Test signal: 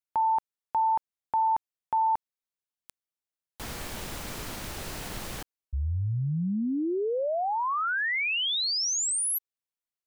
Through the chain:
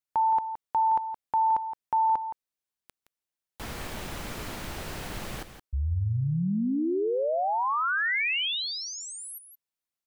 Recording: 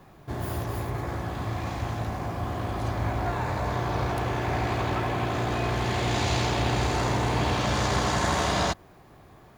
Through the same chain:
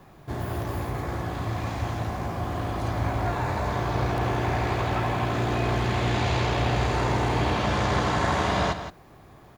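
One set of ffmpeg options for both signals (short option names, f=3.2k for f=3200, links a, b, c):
-filter_complex "[0:a]acrossover=split=3600[a][b];[b]acompressor=threshold=-44dB:ratio=4:attack=1:release=60[c];[a][c]amix=inputs=2:normalize=0,aecho=1:1:169:0.299,volume=1dB"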